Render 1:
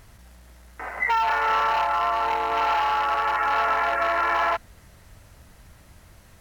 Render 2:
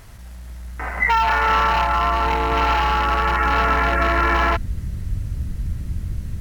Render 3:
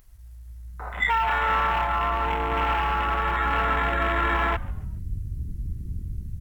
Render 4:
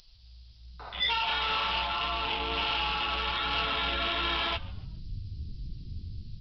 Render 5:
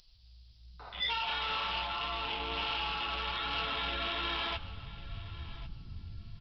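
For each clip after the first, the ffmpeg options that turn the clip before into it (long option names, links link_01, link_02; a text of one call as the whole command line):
ffmpeg -i in.wav -af "asubboost=boost=12:cutoff=220,volume=6dB" out.wav
ffmpeg -i in.wav -filter_complex "[0:a]afwtdn=0.0447,aemphasis=mode=production:type=50kf,asplit=4[link_01][link_02][link_03][link_04];[link_02]adelay=141,afreqshift=-130,volume=-21.5dB[link_05];[link_03]adelay=282,afreqshift=-260,volume=-29.5dB[link_06];[link_04]adelay=423,afreqshift=-390,volume=-37.4dB[link_07];[link_01][link_05][link_06][link_07]amix=inputs=4:normalize=0,volume=-6dB" out.wav
ffmpeg -i in.wav -af "aexciter=amount=13.2:drive=6.1:freq=2900,flanger=delay=5.9:depth=5.3:regen=-30:speed=1.4:shape=sinusoidal,aresample=11025,asoftclip=type=tanh:threshold=-20dB,aresample=44100,volume=-3dB" out.wav
ffmpeg -i in.wav -af "aecho=1:1:1096|2192:0.141|0.0268,volume=-5dB" out.wav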